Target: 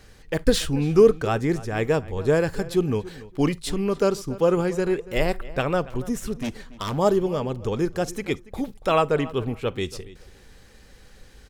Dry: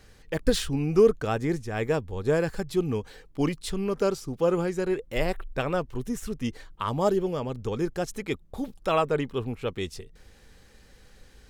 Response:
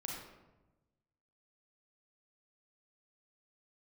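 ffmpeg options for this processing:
-filter_complex "[0:a]asettb=1/sr,asplit=3[a][b][c];[a]atrim=end=6.394[d];[b]atrim=start=6.39:end=6.98,asetpts=PTS-STARTPTS,afade=t=in:d=0.004:c=qsin,afade=t=out:st=0.586:d=0.004:c=qsin,aeval=exprs='0.0531*(abs(mod(val(0)/0.0531+3,4)-2)-1)':c=same[e];[c]atrim=start=6.976[f];[d][e]acrossfade=d=0.004:c1=hsin:c2=qsin[g];[g][f]acrossfade=d=0.004:c1=qsin:c2=hsin,asplit=2[h][i];[i]adelay=283,lowpass=f=3.5k:p=1,volume=-18dB,asplit=2[j][k];[k]adelay=283,lowpass=f=3.5k:p=1,volume=0.2[l];[h][j][l]amix=inputs=3:normalize=0,asplit=2[m][n];[1:a]atrim=start_sample=2205,atrim=end_sample=3087[o];[n][o]afir=irnorm=-1:irlink=0,volume=-15dB[p];[m][p]amix=inputs=2:normalize=0,volume=3dB"

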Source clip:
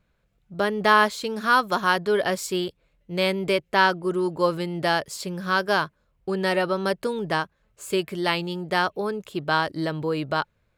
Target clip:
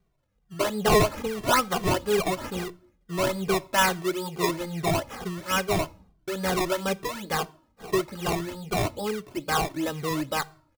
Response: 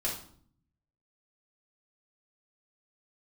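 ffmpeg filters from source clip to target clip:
-filter_complex "[0:a]acrusher=samples=20:mix=1:aa=0.000001:lfo=1:lforange=20:lforate=2.3,asplit=2[a][b];[1:a]atrim=start_sample=2205[c];[b][c]afir=irnorm=-1:irlink=0,volume=-22dB[d];[a][d]amix=inputs=2:normalize=0,asplit=2[e][f];[f]adelay=2.1,afreqshift=-2.3[g];[e][g]amix=inputs=2:normalize=1"

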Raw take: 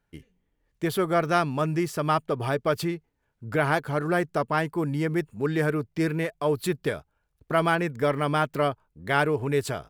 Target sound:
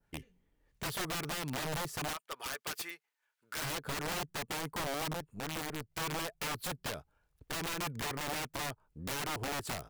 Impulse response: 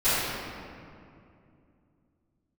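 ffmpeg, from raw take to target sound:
-filter_complex "[0:a]asettb=1/sr,asplit=3[a][b][c];[a]atrim=end=2.134[d];[b]atrim=start=2.13:end=3.62,asetpts=PTS-STARTPTS,afade=t=in:d=0.004:c=qsin,afade=t=out:st=1.486:d=0.004:c=qsin,highpass=1.4k[e];[c]atrim=start=3.616[f];[d][e]acrossfade=d=0.004:c1=hsin:c2=qsin[g];[g][f]acrossfade=d=0.004:c1=qsin:c2=hsin,adynamicequalizer=threshold=0.00794:dfrequency=3100:dqfactor=0.73:tfrequency=3100:tqfactor=0.73:attack=5:release=100:ratio=0.375:range=3:mode=cutabove:tftype=bell,acompressor=threshold=-32dB:ratio=5,asettb=1/sr,asplit=3[h][i][j];[h]atrim=end=5.134[k];[i]atrim=start=5.13:end=5.9,asetpts=PTS-STARTPTS,afade=t=in:d=0.004:c=qsin,afade=t=out:st=0.766:d=0.004:c=qsin,aeval=exprs='(tanh(44.7*val(0)+0.8)-tanh(0.8))/44.7':c=same[l];[j]atrim=start=5.896[m];[k][l]acrossfade=d=0.004:c1=hsin:c2=qsin[n];[n][m]acrossfade=d=0.004:c1=qsin:c2=hsin,aeval=exprs='(mod(37.6*val(0)+1,2)-1)/37.6':c=same"

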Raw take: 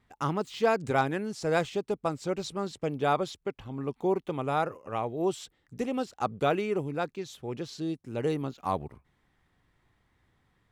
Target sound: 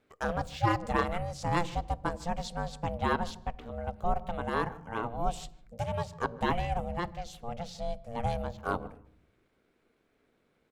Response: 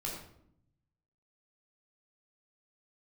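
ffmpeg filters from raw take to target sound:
-filter_complex "[0:a]aeval=exprs='val(0)*sin(2*PI*350*n/s)':c=same,asplit=2[a][b];[b]adelay=152,lowpass=f=1.8k:p=1,volume=-20.5dB,asplit=2[c][d];[d]adelay=152,lowpass=f=1.8k:p=1,volume=0.16[e];[a][c][e]amix=inputs=3:normalize=0,asplit=2[f][g];[1:a]atrim=start_sample=2205,lowshelf=f=220:g=8.5[h];[g][h]afir=irnorm=-1:irlink=0,volume=-20dB[i];[f][i]amix=inputs=2:normalize=0"

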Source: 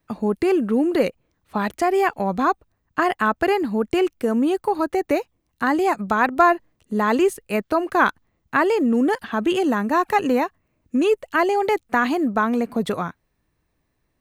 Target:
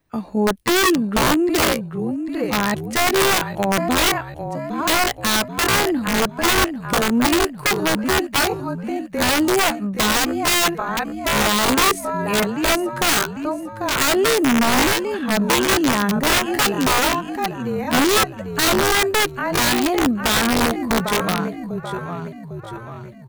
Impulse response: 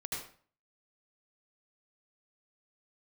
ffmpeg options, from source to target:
-filter_complex "[0:a]asplit=7[a][b][c][d][e][f][g];[b]adelay=485,afreqshift=-35,volume=-8dB[h];[c]adelay=970,afreqshift=-70,volume=-13.7dB[i];[d]adelay=1455,afreqshift=-105,volume=-19.4dB[j];[e]adelay=1940,afreqshift=-140,volume=-25dB[k];[f]adelay=2425,afreqshift=-175,volume=-30.7dB[l];[g]adelay=2910,afreqshift=-210,volume=-36.4dB[m];[a][h][i][j][k][l][m]amix=inputs=7:normalize=0,aeval=exprs='(mod(4.73*val(0)+1,2)-1)/4.73':c=same,atempo=0.61,volume=2.5dB"

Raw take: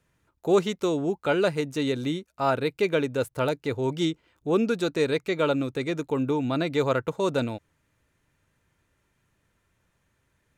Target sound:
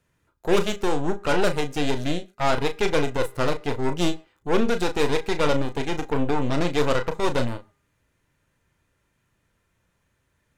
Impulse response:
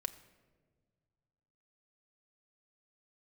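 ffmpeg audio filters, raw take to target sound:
-filter_complex "[0:a]aeval=exprs='0.282*(cos(1*acos(clip(val(0)/0.282,-1,1)))-cos(1*PI/2))+0.0501*(cos(8*acos(clip(val(0)/0.282,-1,1)))-cos(8*PI/2))':c=same,bandreject=f=404.1:t=h:w=4,bandreject=f=808.2:t=h:w=4,bandreject=f=1.2123k:t=h:w=4,bandreject=f=1.6164k:t=h:w=4,bandreject=f=2.0205k:t=h:w=4,asplit=2[a][b];[1:a]atrim=start_sample=2205,afade=t=out:st=0.16:d=0.01,atrim=end_sample=7497,adelay=34[c];[b][c]afir=irnorm=-1:irlink=0,volume=-7.5dB[d];[a][d]amix=inputs=2:normalize=0"

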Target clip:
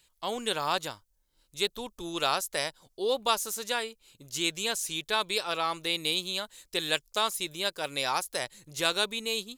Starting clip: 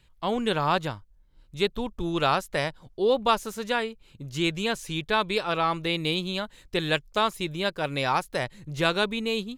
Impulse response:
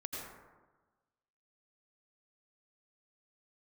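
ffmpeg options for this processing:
-af "bass=f=250:g=-11,treble=f=4k:g=15,volume=-5dB"

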